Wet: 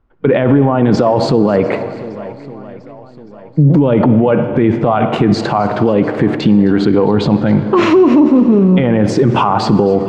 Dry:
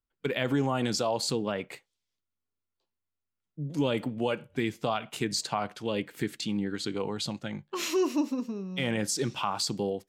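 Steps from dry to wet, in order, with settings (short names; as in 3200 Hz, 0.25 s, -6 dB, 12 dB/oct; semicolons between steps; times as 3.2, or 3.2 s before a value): LPF 1100 Hz 12 dB/oct; in parallel at -0.5 dB: negative-ratio compressor -35 dBFS; on the sum: swung echo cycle 1.163 s, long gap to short 1.5:1, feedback 36%, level -24 dB; on a send at -13.5 dB: reverb RT60 1.8 s, pre-delay 50 ms; on the sum: maximiser +24.5 dB; warbling echo 0.265 s, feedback 44%, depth 61 cents, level -20 dB; gain -1.5 dB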